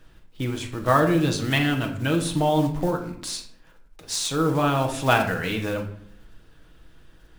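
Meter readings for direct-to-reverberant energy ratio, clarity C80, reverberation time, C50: 3.0 dB, 12.5 dB, 0.65 s, 9.0 dB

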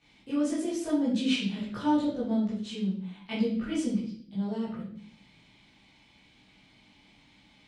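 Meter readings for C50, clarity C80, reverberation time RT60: 2.5 dB, 7.0 dB, 0.55 s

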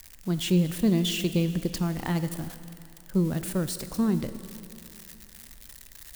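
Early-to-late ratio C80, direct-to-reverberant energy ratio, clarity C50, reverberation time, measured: 12.5 dB, 10.5 dB, 11.5 dB, 2.8 s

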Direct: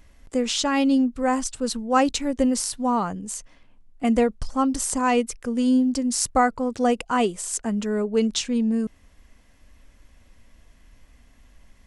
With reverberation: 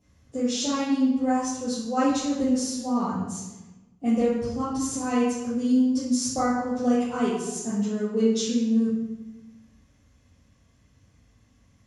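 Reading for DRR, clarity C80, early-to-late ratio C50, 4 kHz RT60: -9.5 dB, 3.0 dB, -1.0 dB, 0.75 s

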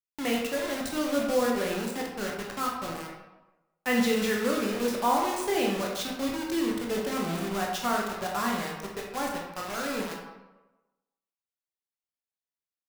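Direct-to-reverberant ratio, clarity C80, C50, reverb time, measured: -1.5 dB, 5.5 dB, 2.5 dB, 1.1 s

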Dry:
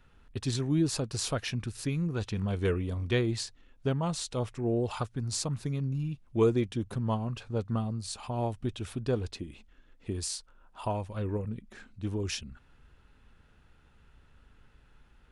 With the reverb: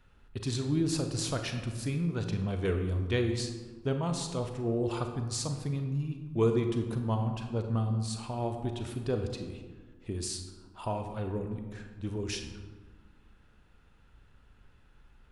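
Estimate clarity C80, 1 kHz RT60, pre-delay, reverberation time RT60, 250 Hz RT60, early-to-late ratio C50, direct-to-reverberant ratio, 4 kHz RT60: 8.5 dB, 1.5 s, 34 ms, 1.5 s, 1.9 s, 6.5 dB, 5.5 dB, 0.75 s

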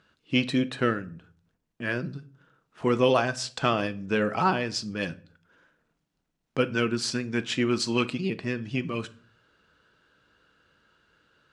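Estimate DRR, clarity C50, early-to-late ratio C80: 11.0 dB, 19.5 dB, 24.0 dB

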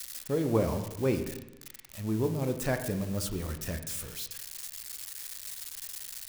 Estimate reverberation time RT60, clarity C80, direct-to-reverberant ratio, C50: 1.0 s, 11.0 dB, 7.0 dB, 9.0 dB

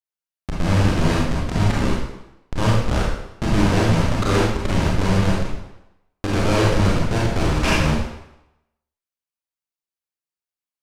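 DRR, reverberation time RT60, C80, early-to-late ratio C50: -5.5 dB, 0.90 s, 3.0 dB, -1.0 dB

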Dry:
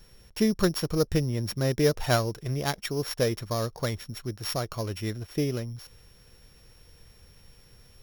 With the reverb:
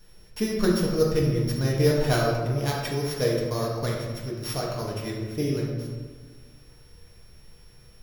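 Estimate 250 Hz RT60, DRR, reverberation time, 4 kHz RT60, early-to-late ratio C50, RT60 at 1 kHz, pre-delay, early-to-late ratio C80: 1.9 s, -3.5 dB, 1.5 s, 0.85 s, 1.5 dB, 1.4 s, 4 ms, 3.5 dB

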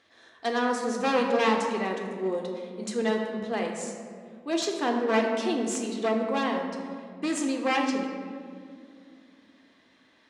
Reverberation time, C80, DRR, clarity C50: 2.3 s, 5.5 dB, 1.5 dB, 4.0 dB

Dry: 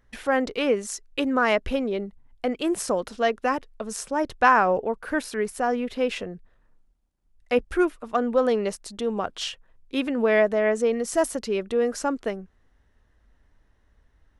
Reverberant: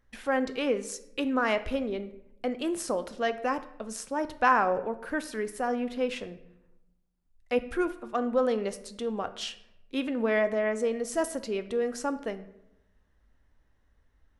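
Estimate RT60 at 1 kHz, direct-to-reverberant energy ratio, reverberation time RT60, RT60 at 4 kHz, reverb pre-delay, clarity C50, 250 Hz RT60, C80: 0.75 s, 10.5 dB, 0.85 s, 0.55 s, 4 ms, 14.5 dB, 1.2 s, 17.0 dB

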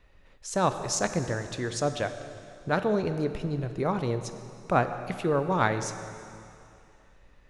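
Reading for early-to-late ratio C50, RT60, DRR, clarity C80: 9.5 dB, 2.6 s, 8.5 dB, 10.0 dB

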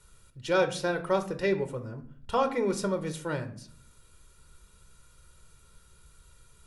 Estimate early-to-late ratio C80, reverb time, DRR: 17.0 dB, 0.55 s, 7.0 dB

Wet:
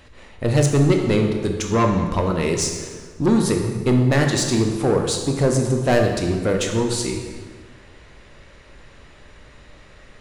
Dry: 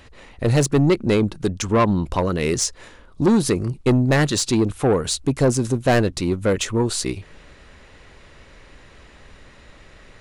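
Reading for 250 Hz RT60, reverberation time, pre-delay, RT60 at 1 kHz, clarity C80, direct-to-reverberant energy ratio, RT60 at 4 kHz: 1.8 s, 1.5 s, 13 ms, 1.4 s, 6.0 dB, 2.5 dB, 1.2 s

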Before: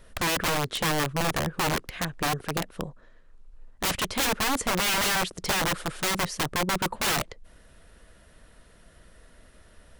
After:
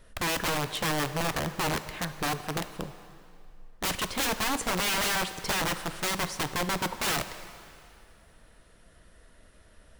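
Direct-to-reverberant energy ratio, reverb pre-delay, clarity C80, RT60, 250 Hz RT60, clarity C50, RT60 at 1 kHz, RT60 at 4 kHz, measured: 10.5 dB, 3 ms, 12.5 dB, 2.5 s, 2.3 s, 11.5 dB, 2.6 s, 2.2 s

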